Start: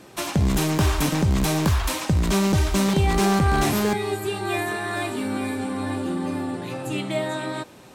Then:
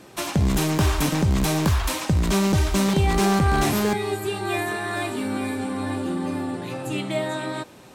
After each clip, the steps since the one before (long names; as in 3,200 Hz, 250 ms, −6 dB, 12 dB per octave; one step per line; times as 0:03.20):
no processing that can be heard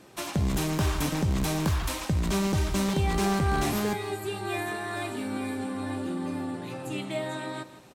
single-tap delay 160 ms −14.5 dB
level −6 dB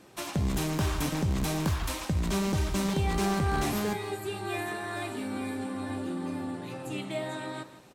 flanger 1.9 Hz, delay 3.5 ms, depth 5.9 ms, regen −88%
level +2.5 dB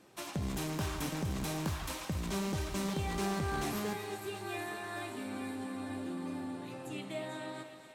low-shelf EQ 66 Hz −7.5 dB
feedback echo with a high-pass in the loop 245 ms, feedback 75%, high-pass 420 Hz, level −11.5 dB
level −6 dB